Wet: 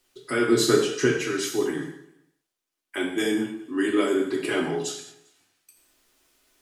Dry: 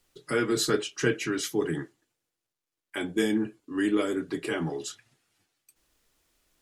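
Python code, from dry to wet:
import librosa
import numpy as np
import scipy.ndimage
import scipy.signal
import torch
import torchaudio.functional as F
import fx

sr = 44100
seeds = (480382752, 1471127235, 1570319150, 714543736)

y = fx.low_shelf(x, sr, hz=150.0, db=-11.0)
y = fx.echo_feedback(y, sr, ms=198, feedback_pct=33, wet_db=-21)
y = fx.rider(y, sr, range_db=10, speed_s=2.0)
y = fx.low_shelf(y, sr, hz=500.0, db=7.5, at=(0.48, 1.06))
y = fx.rev_gated(y, sr, seeds[0], gate_ms=240, shape='falling', drr_db=0.5)
y = y * librosa.db_to_amplitude(1.5)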